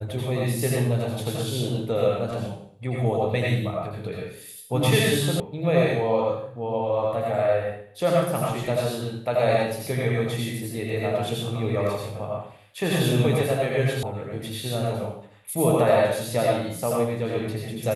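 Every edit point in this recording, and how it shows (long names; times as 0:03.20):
0:05.40: cut off before it has died away
0:14.03: cut off before it has died away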